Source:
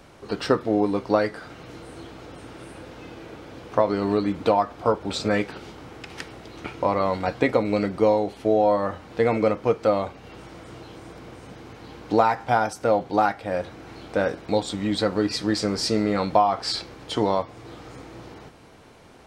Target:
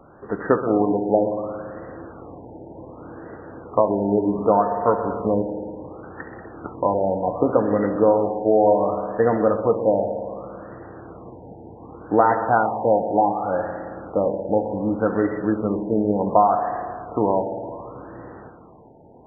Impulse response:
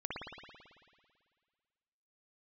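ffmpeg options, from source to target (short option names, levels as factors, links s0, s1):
-filter_complex "[0:a]lowshelf=f=84:g=-8,asplit=2[s0][s1];[1:a]atrim=start_sample=2205,highshelf=f=6400:g=5.5,adelay=69[s2];[s1][s2]afir=irnorm=-1:irlink=0,volume=0.355[s3];[s0][s3]amix=inputs=2:normalize=0,afftfilt=real='re*lt(b*sr/1024,920*pow(2000/920,0.5+0.5*sin(2*PI*0.67*pts/sr)))':imag='im*lt(b*sr/1024,920*pow(2000/920,0.5+0.5*sin(2*PI*0.67*pts/sr)))':win_size=1024:overlap=0.75,volume=1.33"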